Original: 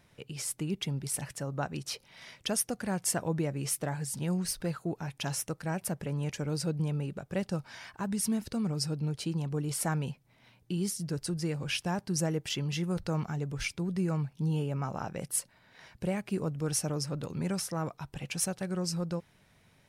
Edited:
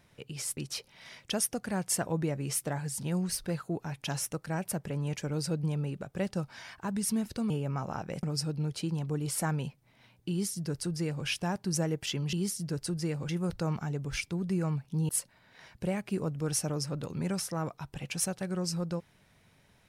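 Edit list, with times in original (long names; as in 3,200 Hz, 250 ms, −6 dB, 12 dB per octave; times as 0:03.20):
0:00.57–0:01.73: remove
0:10.73–0:11.69: duplicate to 0:12.76
0:14.56–0:15.29: move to 0:08.66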